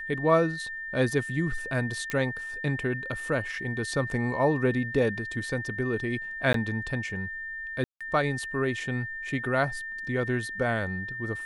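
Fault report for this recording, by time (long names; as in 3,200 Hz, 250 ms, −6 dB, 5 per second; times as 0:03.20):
whistle 1,800 Hz −34 dBFS
0:02.10: click −16 dBFS
0:06.53–0:06.54: drop-out 13 ms
0:07.84–0:08.01: drop-out 166 ms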